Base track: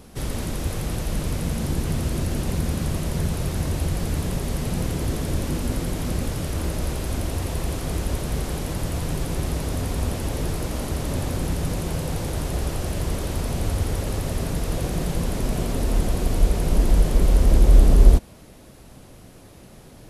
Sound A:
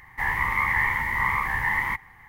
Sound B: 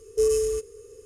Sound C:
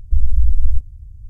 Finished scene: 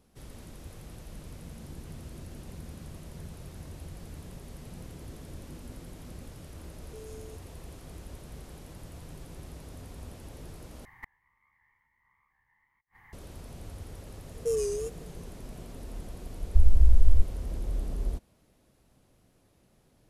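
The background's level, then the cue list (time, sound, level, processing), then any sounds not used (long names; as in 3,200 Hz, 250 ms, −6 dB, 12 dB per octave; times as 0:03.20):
base track −19 dB
0:06.76: mix in B −16.5 dB + downward compressor 3 to 1, threshold −31 dBFS
0:10.85: overwrite with A −6.5 dB + gate with flip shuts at −22 dBFS, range −41 dB
0:14.28: mix in B −7 dB + tape wow and flutter 120 cents
0:16.43: mix in C −4.5 dB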